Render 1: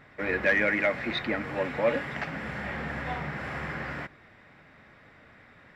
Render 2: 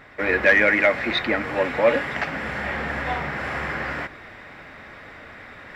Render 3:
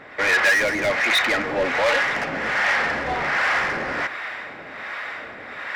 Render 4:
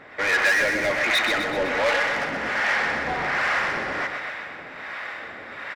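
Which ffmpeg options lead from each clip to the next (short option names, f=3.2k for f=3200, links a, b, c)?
-af "equalizer=f=150:t=o:w=1.4:g=-7,areverse,acompressor=mode=upward:threshold=-42dB:ratio=2.5,areverse,volume=8dB"
-filter_complex "[0:a]asplit=2[a][b];[b]highpass=f=720:p=1,volume=24dB,asoftclip=type=tanh:threshold=-5dB[c];[a][c]amix=inputs=2:normalize=0,lowpass=f=4.9k:p=1,volume=-6dB,acrossover=split=630[d][e];[d]aeval=exprs='val(0)*(1-0.7/2+0.7/2*cos(2*PI*1.3*n/s))':c=same[f];[e]aeval=exprs='val(0)*(1-0.7/2-0.7/2*cos(2*PI*1.3*n/s))':c=same[g];[f][g]amix=inputs=2:normalize=0,volume=-4dB"
-af "aecho=1:1:126|252|378|504|630|756|882:0.447|0.246|0.135|0.0743|0.0409|0.0225|0.0124,volume=-3dB"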